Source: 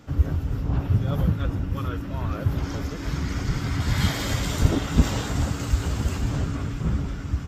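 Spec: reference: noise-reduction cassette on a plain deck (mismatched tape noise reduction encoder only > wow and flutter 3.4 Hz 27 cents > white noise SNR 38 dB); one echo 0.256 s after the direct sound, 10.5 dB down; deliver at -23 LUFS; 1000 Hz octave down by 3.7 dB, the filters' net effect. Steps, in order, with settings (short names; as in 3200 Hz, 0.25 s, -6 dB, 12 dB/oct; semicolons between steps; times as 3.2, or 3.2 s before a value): bell 1000 Hz -5 dB; echo 0.256 s -10.5 dB; mismatched tape noise reduction encoder only; wow and flutter 3.4 Hz 27 cents; white noise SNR 38 dB; gain +2.5 dB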